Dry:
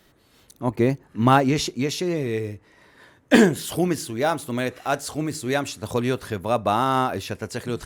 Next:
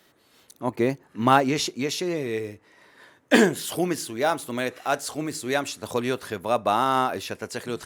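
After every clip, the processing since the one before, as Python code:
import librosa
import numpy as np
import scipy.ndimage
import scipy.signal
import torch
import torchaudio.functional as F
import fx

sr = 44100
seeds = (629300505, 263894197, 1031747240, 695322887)

y = fx.highpass(x, sr, hz=300.0, slope=6)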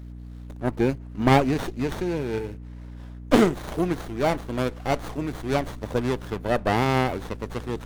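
y = fx.add_hum(x, sr, base_hz=60, snr_db=13)
y = fx.running_max(y, sr, window=17)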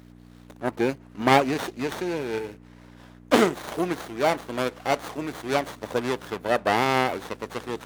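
y = fx.highpass(x, sr, hz=470.0, slope=6)
y = y * librosa.db_to_amplitude(3.0)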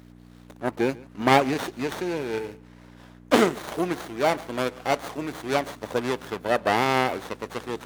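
y = x + 10.0 ** (-22.5 / 20.0) * np.pad(x, (int(139 * sr / 1000.0), 0))[:len(x)]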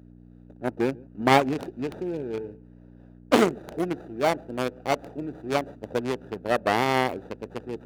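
y = fx.wiener(x, sr, points=41)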